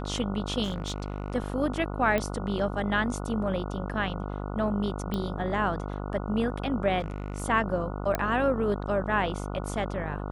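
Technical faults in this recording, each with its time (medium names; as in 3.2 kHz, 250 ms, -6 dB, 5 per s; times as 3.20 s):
buzz 50 Hz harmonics 29 -34 dBFS
0.63–1.36 s: clipped -26 dBFS
2.18 s: pop -15 dBFS
5.14 s: pop -18 dBFS
6.99–7.42 s: clipped -28 dBFS
8.15 s: pop -12 dBFS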